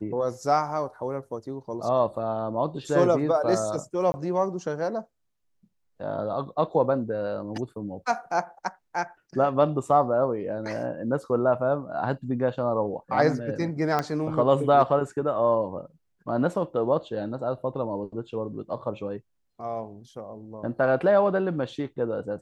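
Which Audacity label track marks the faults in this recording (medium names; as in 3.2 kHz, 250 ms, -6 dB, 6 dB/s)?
4.120000	4.140000	dropout 20 ms
13.990000	13.990000	pop -12 dBFS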